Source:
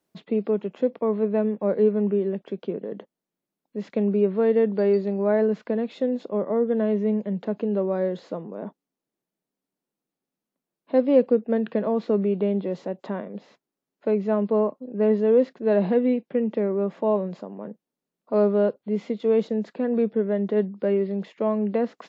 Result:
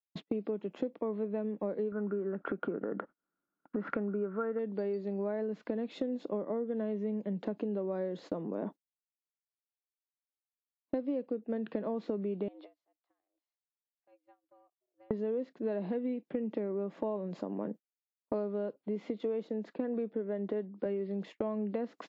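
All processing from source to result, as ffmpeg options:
-filter_complex "[0:a]asettb=1/sr,asplit=3[a][b][c];[a]atrim=end=1.924[d];[b]atrim=start=1.92:end=4.59,asetpts=PTS-STARTPTS,afade=t=in:d=0.004:c=qsin,afade=t=out:st=2.666:d=0.004:c=qsin,acompressor=mode=upward:threshold=-25dB:ratio=2.5:attack=3.2:release=140:knee=2.83:detection=peak,lowpass=f=1.4k:t=q:w=13[e];[c]atrim=start=4.586[f];[d][e]acrossfade=d=0.004:c1=hsin:c2=qsin[g];[g][f]acrossfade=d=0.004:c1=qsin:c2=hsin,asettb=1/sr,asplit=3[h][i][j];[h]atrim=end=12.484[k];[i]atrim=start=12.48:end=15.11,asetpts=PTS-STARTPTS,afade=t=in:d=0.004:c=qsin,afade=t=out:st=2.626:d=0.004:c=qsin,highpass=f=1.3k:p=1,acompressor=threshold=-43dB:ratio=8:attack=3.2:release=140:knee=1:detection=peak,afreqshift=120[l];[j]atrim=start=15.106[m];[k][l]acrossfade=d=0.004:c1=hsin:c2=qsin[n];[n][m]acrossfade=d=0.004:c1=qsin:c2=hsin,asettb=1/sr,asplit=3[o][p][q];[o]atrim=end=18.804[r];[p]atrim=start=18.8:end=20.86,asetpts=PTS-STARTPTS,afade=t=in:d=0.004:c=qsin,afade=t=out:st=2.056:d=0.004:c=qsin,highpass=f=240:p=1,highshelf=f=3.9k:g=-8.5[s];[q]atrim=start=20.856[t];[r][s]acrossfade=d=0.004:c1=hsin:c2=qsin[u];[u][t]acrossfade=d=0.004:c1=qsin:c2=hsin,agate=range=-41dB:threshold=-42dB:ratio=16:detection=peak,equalizer=f=300:t=o:w=0.36:g=7.5,acompressor=threshold=-31dB:ratio=12"

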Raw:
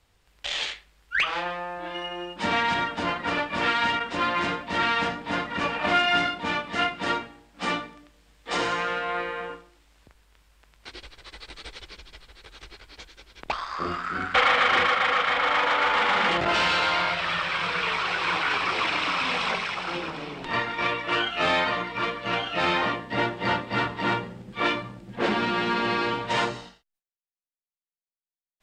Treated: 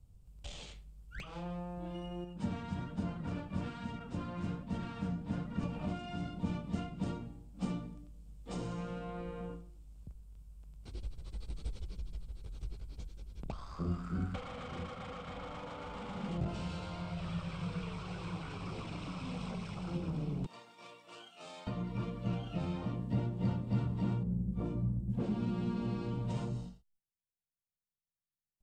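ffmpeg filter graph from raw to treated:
-filter_complex "[0:a]asettb=1/sr,asplit=3[a][b][c];[a]atrim=end=2.244[d];[b]atrim=start=2.24:end=5.63,asetpts=PTS-STARTPTS,afade=t=in:d=0.004:c=qsin,afade=t=out:st=3.386:d=0.004:c=qsin,equalizer=f=1.6k:t=o:w=0.54:g=5.5,flanger=delay=4.3:depth=7.2:regen=63:speed=1.2:shape=sinusoidal[e];[c]atrim=start=5.626[f];[d][e]acrossfade=d=0.004:c1=hsin:c2=qsin[g];[g][f]acrossfade=d=0.004:c1=qsin:c2=hsin,asettb=1/sr,asplit=3[h][i][j];[h]atrim=end=20.464[k];[i]atrim=start=20.46:end=21.67,asetpts=PTS-STARTPTS,afade=t=in:d=0.004:c=qsin,afade=t=out:st=1.206:d=0.004:c=qsin,highpass=1k,equalizer=f=1.7k:w=0.52:g=-10.5[l];[j]atrim=start=21.666[m];[k][l]acrossfade=d=0.004:c1=hsin:c2=qsin[n];[n][m]acrossfade=d=0.004:c1=qsin:c2=hsin,asettb=1/sr,asplit=3[o][p][q];[o]atrim=end=24.234[r];[p]atrim=start=24.23:end=25.1,asetpts=PTS-STARTPTS,afade=t=in:d=0.004:c=qsin,afade=t=out:st=0.866:d=0.004:c=qsin,equalizer=f=3.3k:w=0.44:g=-14.5,aeval=exprs='val(0)+0.00355*(sin(2*PI*60*n/s)+sin(2*PI*2*60*n/s)/2+sin(2*PI*3*60*n/s)/3+sin(2*PI*4*60*n/s)/4+sin(2*PI*5*60*n/s)/5)':c=same,asplit=2[s][t];[t]adelay=28,volume=-13.5dB[u];[s][u]amix=inputs=2:normalize=0,atrim=end_sample=38367[v];[q]atrim=start=25.096[w];[r][v]acrossfade=d=0.004:c1=hsin:c2=qsin[x];[x][w]acrossfade=d=0.004:c1=qsin:c2=hsin,equalizer=f=1.8k:t=o:w=0.59:g=-11,acompressor=threshold=-30dB:ratio=6,firequalizer=gain_entry='entry(160,0);entry(310,-15);entry(930,-24);entry(3600,-27);entry(8200,-16)':delay=0.05:min_phase=1,volume=9dB"

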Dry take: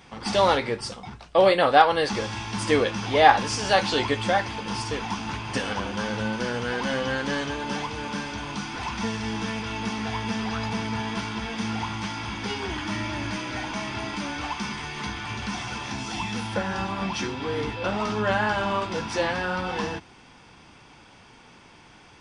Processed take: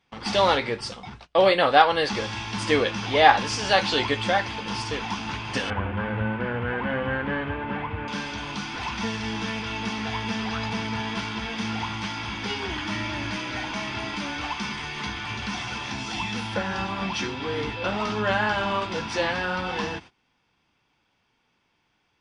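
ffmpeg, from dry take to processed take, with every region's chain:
-filter_complex "[0:a]asettb=1/sr,asplit=3[a][b][c];[a]atrim=end=5.704[d];[b]atrim=start=5.7:end=8.08,asetpts=PTS-STARTPTS,afade=t=in:d=0.004:c=qsin,afade=t=out:st=2.376:d=0.004:c=qsin,lowpass=f=2.3k:w=0.5412,lowpass=f=2.3k:w=1.3066,equalizer=f=90:t=o:w=0.58:g=13.5[e];[c]atrim=start=8.076[f];[d][e]acrossfade=d=0.004:c1=hsin:c2=qsin[g];[g][f]acrossfade=d=0.004:c1=qsin:c2=hsin,highshelf=f=7.5k:g=-8.5,agate=range=-20dB:threshold=-43dB:ratio=16:detection=peak,equalizer=f=3.4k:w=0.62:g=5,volume=-1dB"

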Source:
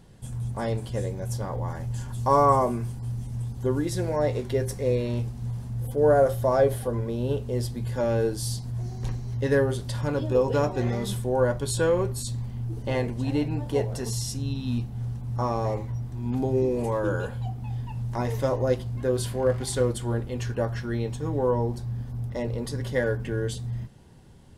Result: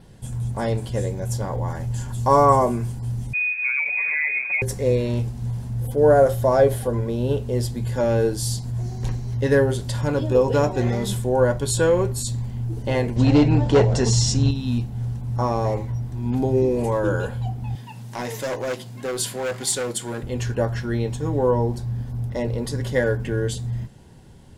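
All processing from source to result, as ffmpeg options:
-filter_complex "[0:a]asettb=1/sr,asplit=3[a][b][c];[a]atrim=end=3.334[d];[b]atrim=start=3.33:end=4.62,asetpts=PTS-STARTPTS,afade=t=in:d=0.004:c=qsin,afade=t=out:st=1.286:d=0.004:c=qsin,aecho=1:1:7:0.93,atrim=end_sample=56889,acompressor=threshold=-24dB:ratio=6:attack=3.2:release=140:knee=1:detection=peak,lowpass=f=2.2k:t=q:w=0.5098,lowpass=f=2.2k:t=q:w=0.6013,lowpass=f=2.2k:t=q:w=0.9,lowpass=f=2.2k:t=q:w=2.563,afreqshift=-2600[e];[c]atrim=start=4.616[f];[d][e]acrossfade=d=0.004:c1=hsin:c2=qsin[g];[g][f]acrossfade=d=0.004:c1=qsin:c2=hsin,asettb=1/sr,asplit=3[h][i][j];[h]atrim=end=13.164[k];[i]atrim=start=13.16:end=14.51,asetpts=PTS-STARTPTS,afade=t=in:d=0.004:c=qsin,afade=t=out:st=1.346:d=0.004:c=qsin,asoftclip=type=hard:threshold=-21.5dB,acontrast=82,lowpass=f=6.9k:w=0.5412,lowpass=f=6.9k:w=1.3066[l];[j]atrim=start=14.506[m];[k][l]acrossfade=d=0.004:c1=hsin:c2=qsin[n];[n][m]acrossfade=d=0.004:c1=qsin:c2=hsin,asettb=1/sr,asplit=3[o][p][q];[o]atrim=end=17.754[r];[p]atrim=start=17.75:end=20.23,asetpts=PTS-STARTPTS,afade=t=in:d=0.004:c=qsin,afade=t=out:st=2.476:d=0.004:c=qsin,highpass=f=140:w=0.5412,highpass=f=140:w=1.3066,asoftclip=type=hard:threshold=-24dB,tiltshelf=f=1.4k:g=-4.5[s];[q]atrim=start=20.226[t];[r][s]acrossfade=d=0.004:c1=hsin:c2=qsin[u];[u][t]acrossfade=d=0.004:c1=qsin:c2=hsin,adynamicequalizer=threshold=0.00126:dfrequency=7200:dqfactor=7.1:tfrequency=7200:tqfactor=7.1:attack=5:release=100:ratio=0.375:range=3:mode=boostabove:tftype=bell,bandreject=f=1.2k:w=15,volume=4.5dB"

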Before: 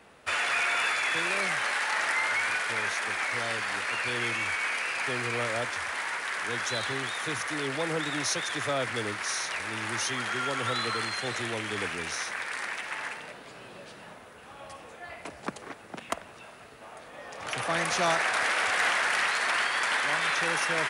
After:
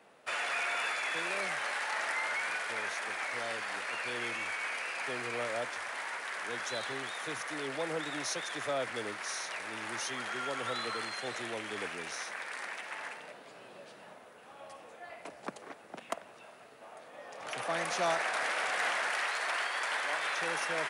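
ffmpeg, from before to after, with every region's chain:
-filter_complex "[0:a]asettb=1/sr,asplit=3[a][b][c];[a]atrim=end=19.104[d];[b]atrim=start=19.1:end=20.39,asetpts=PTS-STARTPTS,afade=t=in:d=0.004:c=qsin,afade=t=out:st=1.286:d=0.004:c=qsin,highpass=300,aeval=exprs='sgn(val(0))*max(abs(val(0))-0.00119,0)':c=same[e];[c]atrim=start=20.386[f];[d][e]acrossfade=d=0.004:c1=hsin:c2=qsin[g];[g][f]acrossfade=d=0.004:c1=qsin:c2=hsin,highpass=160,equalizer=f=630:w=1.4:g=4.5,volume=-7dB"

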